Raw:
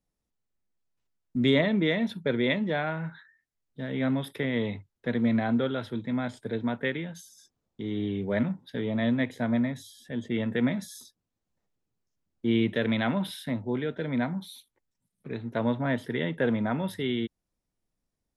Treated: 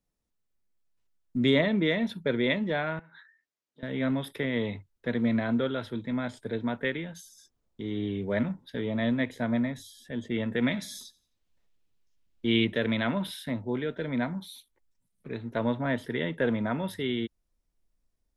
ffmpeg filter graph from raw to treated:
-filter_complex "[0:a]asettb=1/sr,asplit=3[a][b][c];[a]atrim=end=2.994[d];[b]atrim=start=2.99:end=3.83,asetpts=PTS-STARTPTS,afade=t=in:d=0.004:c=qsin,afade=t=out:st=0.836:d=0.004:c=qsin,acompressor=threshold=-45dB:ratio=8:attack=3.2:release=140:knee=1:detection=peak,highpass=250,lowpass=7.5k[e];[c]atrim=start=3.826[f];[d][e]acrossfade=d=0.004:c1=hsin:c2=qsin[g];[g][f]acrossfade=d=0.004:c1=qsin:c2=hsin,asettb=1/sr,asplit=3[h][i][j];[h]atrim=end=10.624[k];[i]atrim=start=10.62:end=12.65,asetpts=PTS-STARTPTS,afade=t=in:d=0.004:c=qsin,afade=t=out:st=2.026:d=0.004:c=qsin,equalizer=f=3.1k:w=0.88:g=8.5,aecho=1:1:87|174|261:0.0891|0.0321|0.0116,atrim=end_sample=89523[l];[j]atrim=start=12.646[m];[k][l]acrossfade=d=0.004:c1=hsin:c2=qsin[n];[n][m]acrossfade=d=0.004:c1=qsin:c2=hsin,bandreject=f=780:w=18,asubboost=boost=3.5:cutoff=60"

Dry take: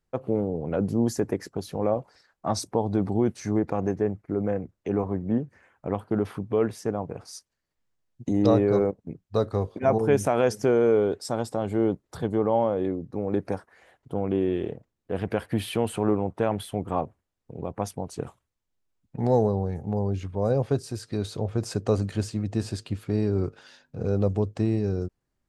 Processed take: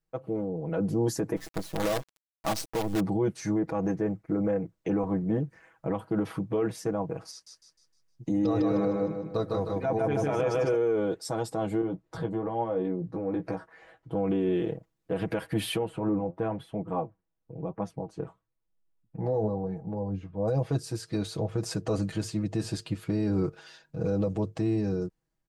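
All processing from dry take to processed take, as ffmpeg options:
-filter_complex "[0:a]asettb=1/sr,asplit=3[a][b][c];[a]atrim=end=1.364[d];[b]atrim=start=1.36:end=3,asetpts=PTS-STARTPTS,afade=t=in:d=0.004:c=qsin,afade=t=out:st=1.636:d=0.004:c=qsin,equalizer=f=82:t=o:w=0.26:g=4,acrusher=bits=5:dc=4:mix=0:aa=0.000001[e];[c]atrim=start=2.996[f];[d][e]acrossfade=d=0.004:c1=hsin:c2=qsin[g];[g][f]acrossfade=d=0.004:c1=qsin:c2=hsin,asettb=1/sr,asplit=3[h][i][j];[h]atrim=end=7.314[k];[i]atrim=start=7.31:end=10.76,asetpts=PTS-STARTPTS,afade=t=in:d=0.004:c=qsin,afade=t=out:st=3.446:d=0.004:c=qsin,acrossover=split=5400[l][m];[m]acompressor=threshold=-58dB:ratio=4:attack=1:release=60[n];[l][n]amix=inputs=2:normalize=0,aecho=1:1:154|308|462|616|770|924:0.708|0.304|0.131|0.0563|0.0242|0.0104,atrim=end_sample=152145[o];[j]atrim=start=10.756[p];[k][o]acrossfade=d=0.004:c1=hsin:c2=qsin[q];[q][p]acrossfade=d=0.004:c1=qsin:c2=hsin,asettb=1/sr,asplit=3[r][s][t];[r]atrim=end=11.814[u];[s]atrim=start=11.81:end=14.15,asetpts=PTS-STARTPTS,afade=t=in:d=0.004:c=qsin,afade=t=out:st=2.336:d=0.004:c=qsin,aemphasis=mode=reproduction:type=50fm,acompressor=threshold=-32dB:ratio=2:attack=3.2:release=140:knee=1:detection=peak,asplit=2[v][w];[w]adelay=17,volume=-6dB[x];[v][x]amix=inputs=2:normalize=0,atrim=end_sample=103194[y];[t]atrim=start=14.146[z];[u][y]acrossfade=d=0.004:c1=hsin:c2=qsin[aa];[aa][z]acrossfade=d=0.004:c1=qsin:c2=hsin,asettb=1/sr,asplit=3[ab][ac][ad];[ab]atrim=end=15.784[ae];[ac]atrim=start=15.78:end=20.48,asetpts=PTS-STARTPTS,afade=t=in:d=0.004:c=qsin,afade=t=out:st=4.696:d=0.004:c=qsin,lowpass=f=1.2k:p=1,flanger=delay=4.2:depth=8:regen=59:speed=1:shape=triangular[af];[ad]atrim=start=20.476[ag];[ae][af]acrossfade=d=0.004:c1=hsin:c2=qsin[ah];[ah][ag]acrossfade=d=0.004:c1=qsin:c2=hsin,aecho=1:1:6.2:0.79,dynaudnorm=f=330:g=5:m=8dB,alimiter=limit=-10.5dB:level=0:latency=1:release=54,volume=-8dB"

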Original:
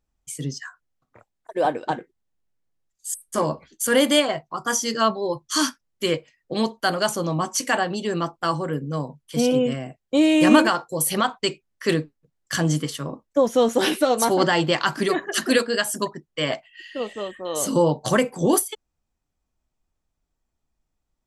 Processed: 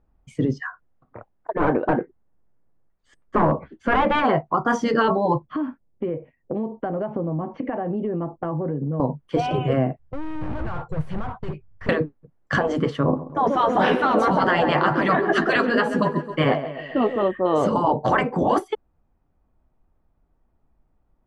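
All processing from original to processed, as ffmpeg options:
-filter_complex "[0:a]asettb=1/sr,asplit=3[a][b][c];[a]atrim=end=1.534[d];[b]atrim=start=1.53:end=4.25,asetpts=PTS-STARTPTS,afade=t=in:d=0.004:c=qsin,afade=t=out:st=2.716:d=0.004:c=qsin,lowpass=2.8k,aeval=exprs='clip(val(0),-1,0.0891)':c=same[e];[c]atrim=start=4.246[f];[d][e]acrossfade=d=0.004:c1=hsin:c2=qsin[g];[g][f]acrossfade=d=0.004:c1=qsin:c2=hsin,asettb=1/sr,asplit=3[h][i][j];[h]atrim=end=5.454[k];[i]atrim=start=5.45:end=9,asetpts=PTS-STARTPTS,afade=t=in:d=0.004:c=qsin,afade=t=out:st=3.546:d=0.004:c=qsin,lowpass=f=2.3k:w=0.5412,lowpass=f=2.3k:w=1.3066,equalizer=f=1.4k:t=o:w=1.3:g=-12.5,acompressor=threshold=-34dB:ratio=12:attack=3.2:release=140:knee=1:detection=peak[l];[j]atrim=start=8.996[m];[k][l]acrossfade=d=0.004:c1=hsin:c2=qsin[n];[n][m]acrossfade=d=0.004:c1=qsin:c2=hsin,asettb=1/sr,asplit=3[o][p][q];[o]atrim=end=9.994[r];[p]atrim=start=9.99:end=11.89,asetpts=PTS-STARTPTS,afade=t=in:d=0.004:c=qsin,afade=t=out:st=1.896:d=0.004:c=qsin,acompressor=threshold=-23dB:ratio=2.5:attack=3.2:release=140:knee=1:detection=peak,aeval=exprs='(tanh(112*val(0)+0.15)-tanh(0.15))/112':c=same,lowshelf=f=170:t=q:w=1.5:g=14[s];[q]atrim=start=11.886[t];[r][s]acrossfade=d=0.004:c1=hsin:c2=qsin[u];[u][t]acrossfade=d=0.004:c1=qsin:c2=hsin,asettb=1/sr,asplit=3[v][w][x];[v]atrim=end=13.034[y];[w]atrim=start=13.03:end=17.23,asetpts=PTS-STARTPTS,afade=t=in:d=0.004:c=qsin,afade=t=out:st=4.196:d=0.004:c=qsin,asplit=2[z][aa];[aa]adelay=12,volume=-8dB[ab];[z][ab]amix=inputs=2:normalize=0,atrim=end_sample=185220,aecho=1:1:133|266|399|532|665:0.15|0.0853|0.0486|0.0277|0.0158,atrim=end_sample=185220[ac];[x]atrim=start=17.226[ad];[y][ac]acrossfade=d=0.004:c1=hsin:c2=qsin[ae];[ae][ad]acrossfade=d=0.004:c1=qsin:c2=hsin,lowpass=1.2k,afftfilt=real='re*lt(hypot(re,im),0.355)':imag='im*lt(hypot(re,im),0.355)':win_size=1024:overlap=0.75,alimiter=level_in=20dB:limit=-1dB:release=50:level=0:latency=1,volume=-7.5dB"

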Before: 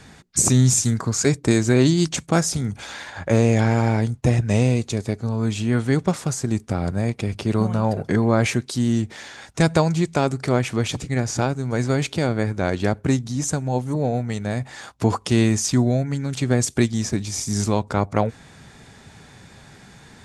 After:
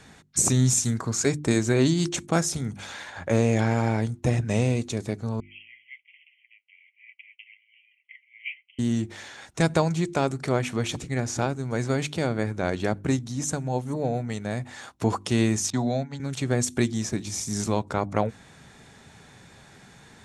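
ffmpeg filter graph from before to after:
-filter_complex "[0:a]asettb=1/sr,asplit=3[a][b][c];[a]atrim=end=5.404[d];[b]atrim=start=5.4:end=8.79,asetpts=PTS-STARTPTS,afade=t=in:d=0.004:c=qsin,afade=t=out:st=3.386:d=0.004:c=qsin,asuperpass=centerf=2500:order=20:qfactor=2.1,flanger=delay=4.9:depth=4.7:regen=43:speed=1.2:shape=sinusoidal[e];[c]atrim=start=8.786[f];[d][e]acrossfade=d=0.004:c1=hsin:c2=qsin[g];[g][f]acrossfade=d=0.004:c1=qsin:c2=hsin,asettb=1/sr,asplit=3[h][i][j];[h]atrim=end=15.704[k];[i]atrim=start=15.7:end=16.2,asetpts=PTS-STARTPTS,afade=t=in:d=0.004:c=qsin,afade=t=out:st=0.496:d=0.004:c=qsin,highpass=f=130:w=0.5412,highpass=f=130:w=1.3066,equalizer=f=340:t=q:w=4:g=-8,equalizer=f=820:t=q:w=4:g=9,equalizer=f=3.8k:t=q:w=4:g=9,lowpass=f=7.3k:w=0.5412,lowpass=f=7.3k:w=1.3066,agate=range=-33dB:threshold=-22dB:ratio=3:release=100:detection=peak[l];[j]atrim=start=16.196[m];[k][l]acrossfade=d=0.004:c1=hsin:c2=qsin[n];[n][m]acrossfade=d=0.004:c1=qsin:c2=hsin,lowshelf=f=110:g=-4,bandreject=f=4.8k:w=15,bandreject=f=49.65:t=h:w=4,bandreject=f=99.3:t=h:w=4,bandreject=f=148.95:t=h:w=4,bandreject=f=198.6:t=h:w=4,bandreject=f=248.25:t=h:w=4,bandreject=f=297.9:t=h:w=4,bandreject=f=347.55:t=h:w=4,volume=-3.5dB"

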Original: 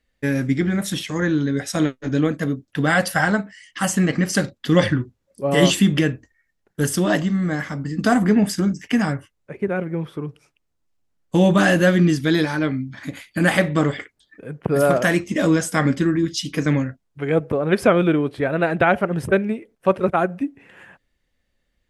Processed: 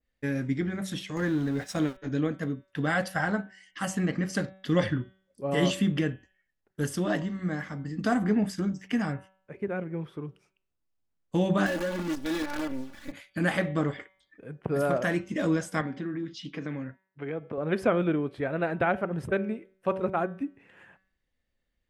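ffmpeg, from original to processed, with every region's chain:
-filter_complex "[0:a]asettb=1/sr,asplit=3[a][b][c];[a]atrim=end=1.164[d];[b]atrim=start=1.16:end=1.98,asetpts=PTS-STARTPTS,afade=t=in:d=0.004:c=qsin,afade=t=out:st=0.816:d=0.004:c=qsin,aeval=exprs='val(0)+0.5*0.0355*sgn(val(0))':c=same,agate=range=-9dB:threshold=-28dB:ratio=16:release=100:detection=peak[e];[c]atrim=start=1.976[f];[d][e]acrossfade=d=0.004:c1=hsin:c2=qsin[g];[g][f]acrossfade=d=0.004:c1=qsin:c2=hsin,asettb=1/sr,asplit=3[h][i][j];[h]atrim=end=11.664[k];[i]atrim=start=11.66:end=13.12,asetpts=PTS-STARTPTS,afade=t=in:d=0.004:c=qsin,afade=t=out:st=1.456:d=0.004:c=qsin,acrusher=bits=4:dc=4:mix=0:aa=0.000001,acompressor=threshold=-19dB:ratio=12:attack=3.2:release=140:knee=1:detection=peak,aecho=1:1:3.5:0.8,atrim=end_sample=64386[l];[j]atrim=start=13.116[m];[k][l]acrossfade=d=0.004:c1=hsin:c2=qsin[n];[n][m]acrossfade=d=0.004:c1=qsin:c2=hsin,asettb=1/sr,asplit=3[o][p][q];[o]atrim=end=15.814[r];[p]atrim=start=15.81:end=17.58,asetpts=PTS-STARTPTS,afade=t=in:d=0.004:c=qsin,afade=t=out:st=1.766:d=0.004:c=qsin,acompressor=threshold=-21dB:ratio=4:attack=3.2:release=140:knee=1:detection=peak,highpass=140,lowpass=3.7k[s];[q]atrim=start=17.576[t];[r][s]acrossfade=d=0.004:c1=hsin:c2=qsin[u];[u][t]acrossfade=d=0.004:c1=qsin:c2=hsin,highshelf=f=7.5k:g=-7.5,bandreject=f=190.1:t=h:w=4,bandreject=f=380.2:t=h:w=4,bandreject=f=570.3:t=h:w=4,bandreject=f=760.4:t=h:w=4,bandreject=f=950.5:t=h:w=4,bandreject=f=1.1406k:t=h:w=4,bandreject=f=1.3307k:t=h:w=4,bandreject=f=1.5208k:t=h:w=4,bandreject=f=1.7109k:t=h:w=4,bandreject=f=1.901k:t=h:w=4,bandreject=f=2.0911k:t=h:w=4,bandreject=f=2.2812k:t=h:w=4,bandreject=f=2.4713k:t=h:w=4,bandreject=f=2.6614k:t=h:w=4,bandreject=f=2.8515k:t=h:w=4,bandreject=f=3.0416k:t=h:w=4,bandreject=f=3.2317k:t=h:w=4,bandreject=f=3.4218k:t=h:w=4,bandreject=f=3.6119k:t=h:w=4,bandreject=f=3.802k:t=h:w=4,adynamicequalizer=threshold=0.0251:dfrequency=1900:dqfactor=0.7:tfrequency=1900:tqfactor=0.7:attack=5:release=100:ratio=0.375:range=2.5:mode=cutabove:tftype=highshelf,volume=-8.5dB"

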